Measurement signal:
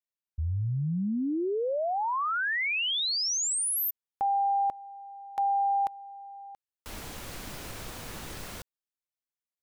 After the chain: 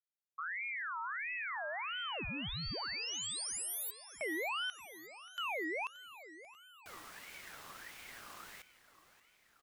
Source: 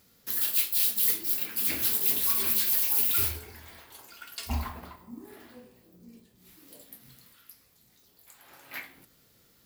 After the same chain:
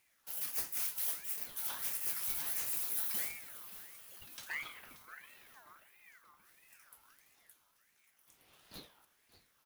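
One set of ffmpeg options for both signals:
-af "aecho=1:1:580|1160|1740|2320|2900|3480:0.168|0.101|0.0604|0.0363|0.0218|0.0131,aeval=exprs='val(0)*sin(2*PI*1700*n/s+1700*0.35/1.5*sin(2*PI*1.5*n/s))':c=same,volume=0.376"

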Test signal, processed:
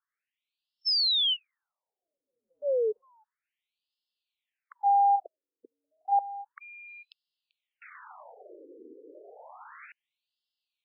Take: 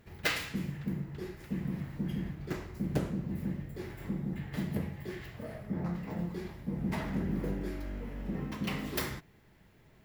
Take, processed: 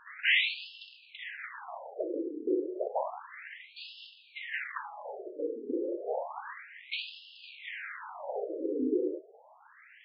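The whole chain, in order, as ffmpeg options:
-af "aeval=exprs='0.188*sin(PI/2*5.62*val(0)/0.188)':c=same,asubboost=boost=4.5:cutoff=65,afftfilt=real='re*between(b*sr/1024,360*pow(3800/360,0.5+0.5*sin(2*PI*0.31*pts/sr))/1.41,360*pow(3800/360,0.5+0.5*sin(2*PI*0.31*pts/sr))*1.41)':imag='im*between(b*sr/1024,360*pow(3800/360,0.5+0.5*sin(2*PI*0.31*pts/sr))/1.41,360*pow(3800/360,0.5+0.5*sin(2*PI*0.31*pts/sr))*1.41)':win_size=1024:overlap=0.75,volume=0.75"

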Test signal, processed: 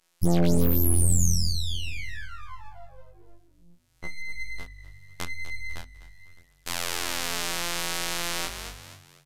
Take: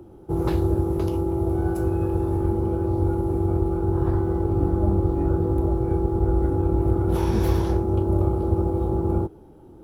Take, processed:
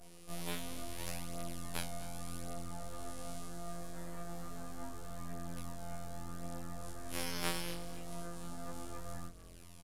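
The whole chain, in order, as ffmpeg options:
-filter_complex "[0:a]asplit=2[s0][s1];[s1]adelay=30,volume=0.501[s2];[s0][s2]amix=inputs=2:normalize=0,acompressor=threshold=0.0141:ratio=2,flanger=delay=3.2:depth=5:regen=81:speed=0.89:shape=triangular,adynamicequalizer=threshold=0.00141:dfrequency=4900:dqfactor=1.1:tfrequency=4900:tqfactor=1.1:attack=5:release=100:ratio=0.375:range=2:mode=boostabove:tftype=bell,afftfilt=real='hypot(re,im)*cos(PI*b)':imag='0':win_size=2048:overlap=0.75,aderivative,aeval=exprs='abs(val(0))':c=same,bandreject=f=50:t=h:w=6,bandreject=f=100:t=h:w=6,bandreject=f=150:t=h:w=6,bandreject=f=200:t=h:w=6,bandreject=f=250:t=h:w=6,aresample=32000,aresample=44100,asplit=4[s3][s4][s5][s6];[s4]adelay=249,afreqshift=-49,volume=0.158[s7];[s5]adelay=498,afreqshift=-98,volume=0.0589[s8];[s6]adelay=747,afreqshift=-147,volume=0.0216[s9];[s3][s7][s8][s9]amix=inputs=4:normalize=0,flanger=delay=17:depth=7.6:speed=0.25,alimiter=level_in=56.2:limit=0.891:release=50:level=0:latency=1,volume=0.376"

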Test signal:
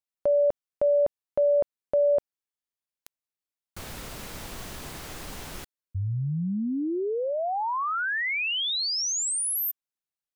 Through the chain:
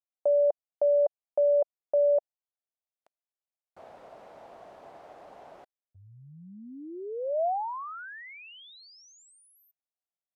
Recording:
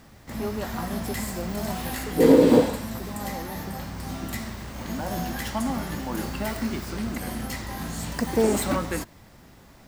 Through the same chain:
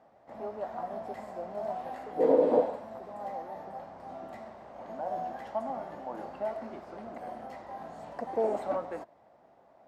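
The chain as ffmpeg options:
-af "bandpass=f=670:t=q:w=3.4:csg=0,volume=1.26"

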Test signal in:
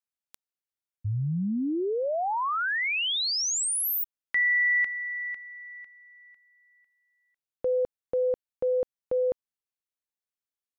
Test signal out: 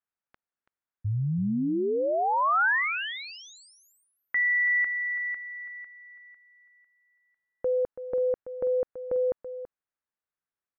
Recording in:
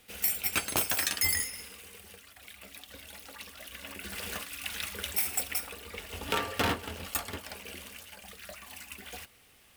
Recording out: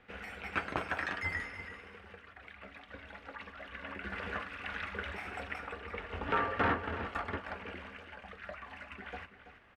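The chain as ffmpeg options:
-filter_complex "[0:a]asplit=2[s0][s1];[s1]alimiter=level_in=1.19:limit=0.0631:level=0:latency=1:release=30,volume=0.841,volume=1.41[s2];[s0][s2]amix=inputs=2:normalize=0,lowpass=f=1600:t=q:w=1.6,aecho=1:1:331:0.251,volume=0.473"

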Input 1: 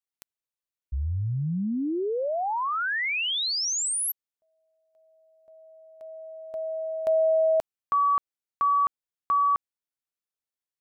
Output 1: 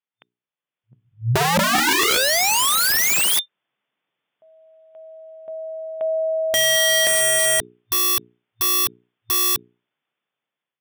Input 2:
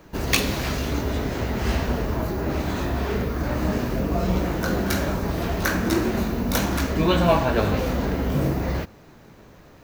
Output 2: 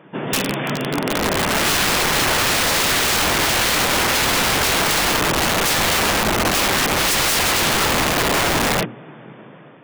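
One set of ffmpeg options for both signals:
-af "bandreject=f=60:t=h:w=6,bandreject=f=120:t=h:w=6,bandreject=f=180:t=h:w=6,bandreject=f=240:t=h:w=6,bandreject=f=300:t=h:w=6,bandreject=f=360:t=h:w=6,bandreject=f=420:t=h:w=6,afftfilt=real='re*between(b*sr/4096,110,3600)':imag='im*between(b*sr/4096,110,3600)':win_size=4096:overlap=0.75,dynaudnorm=f=540:g=5:m=6.68,aeval=exprs='(mod(7.08*val(0)+1,2)-1)/7.08':c=same,volume=1.58"

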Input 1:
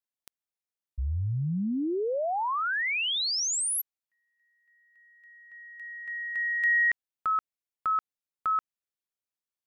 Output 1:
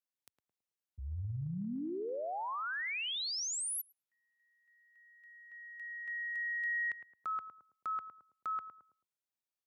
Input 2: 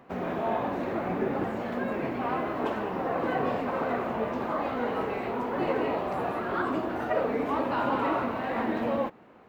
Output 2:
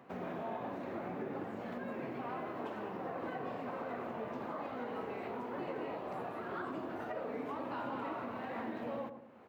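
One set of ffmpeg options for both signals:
-filter_complex "[0:a]highpass=f=84:w=0.5412,highpass=f=84:w=1.3066,asplit=2[s0][s1];[s1]adelay=109,lowpass=f=850:p=1,volume=0.355,asplit=2[s2][s3];[s3]adelay=109,lowpass=f=850:p=1,volume=0.37,asplit=2[s4][s5];[s5]adelay=109,lowpass=f=850:p=1,volume=0.37,asplit=2[s6][s7];[s7]adelay=109,lowpass=f=850:p=1,volume=0.37[s8];[s2][s4][s6][s8]amix=inputs=4:normalize=0[s9];[s0][s9]amix=inputs=2:normalize=0,acompressor=threshold=0.0224:ratio=2.5:attack=0.19:release=447:knee=1:detection=rms,volume=0.631"

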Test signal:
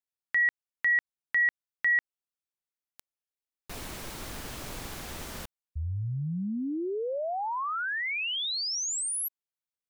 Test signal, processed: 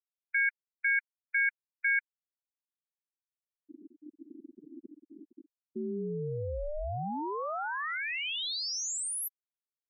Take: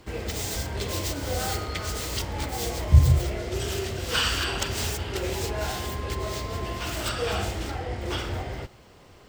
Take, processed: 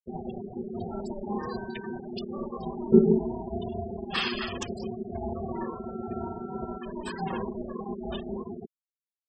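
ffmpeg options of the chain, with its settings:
-af "afftfilt=real='re*gte(hypot(re,im),0.0794)':imag='im*gte(hypot(re,im),0.0794)':win_size=1024:overlap=0.75,aeval=exprs='val(0)*sin(2*PI*300*n/s)':c=same"

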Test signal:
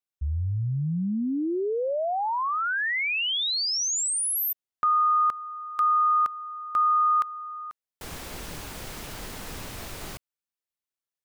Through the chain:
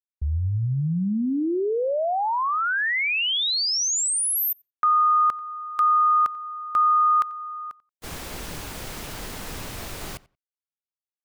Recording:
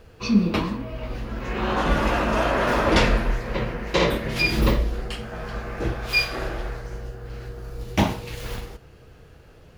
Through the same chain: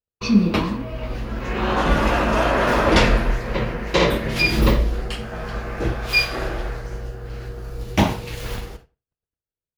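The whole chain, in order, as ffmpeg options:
-filter_complex "[0:a]agate=range=0.00251:threshold=0.01:ratio=16:release=349:detection=peak,asplit=2[s0][s1];[s1]adelay=90,lowpass=f=3100:p=1,volume=0.0891,asplit=2[s2][s3];[s3]adelay=90,lowpass=f=3100:p=1,volume=0.16[s4];[s0][s2][s4]amix=inputs=3:normalize=0,volume=1.41"

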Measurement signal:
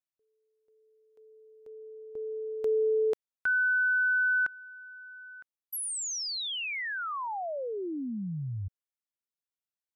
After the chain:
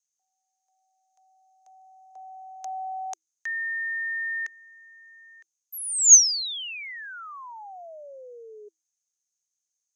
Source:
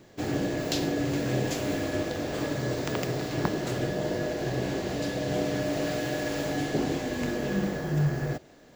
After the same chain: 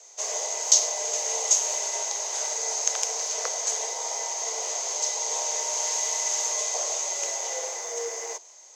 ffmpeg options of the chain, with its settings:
-af "lowpass=f=6100:t=q:w=14,afreqshift=320,aemphasis=mode=production:type=riaa,volume=0.473"

